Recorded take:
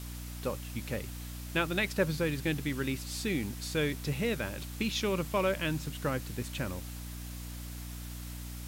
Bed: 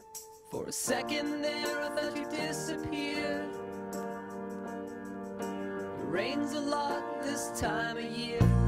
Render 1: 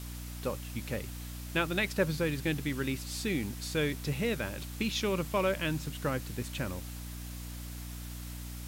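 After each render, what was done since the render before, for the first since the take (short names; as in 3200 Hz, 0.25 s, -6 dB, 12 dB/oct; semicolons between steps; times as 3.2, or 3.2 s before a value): nothing audible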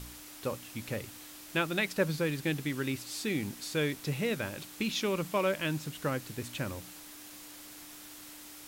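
de-hum 60 Hz, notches 4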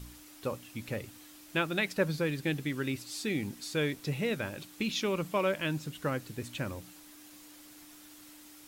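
denoiser 6 dB, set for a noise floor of -49 dBFS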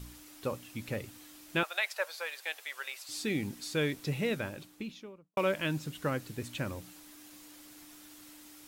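1.63–3.09 steep high-pass 600 Hz; 4.26–5.37 studio fade out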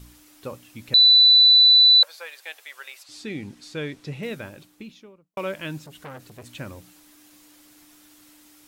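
0.94–2.03 bleep 3980 Hz -10 dBFS; 3.03–4.23 air absorption 54 m; 5.84–6.46 core saturation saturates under 1700 Hz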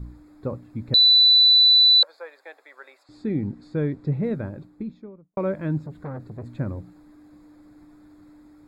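Wiener smoothing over 15 samples; low shelf 400 Hz +11.5 dB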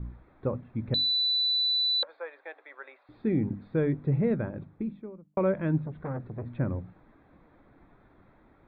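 steep low-pass 3400 Hz 48 dB/oct; notches 50/100/150/200/250/300 Hz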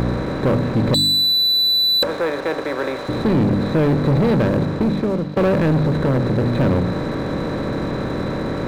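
per-bin compression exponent 0.4; sample leveller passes 3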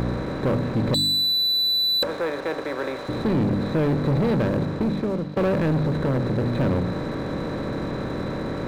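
gain -5 dB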